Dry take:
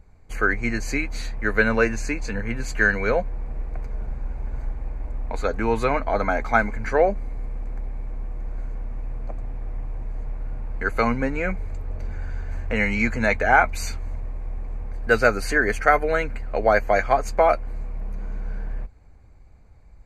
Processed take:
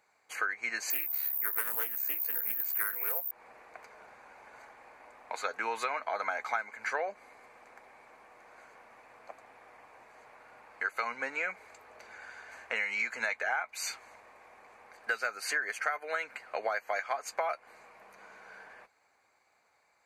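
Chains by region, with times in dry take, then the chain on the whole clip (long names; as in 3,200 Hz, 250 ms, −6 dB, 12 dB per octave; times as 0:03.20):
0:00.90–0:03.31: high-shelf EQ 2,100 Hz −11.5 dB + bad sample-rate conversion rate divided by 3×, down none, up zero stuff + highs frequency-modulated by the lows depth 0.34 ms
whole clip: high-pass filter 930 Hz 12 dB per octave; downward compressor 8 to 1, threshold −29 dBFS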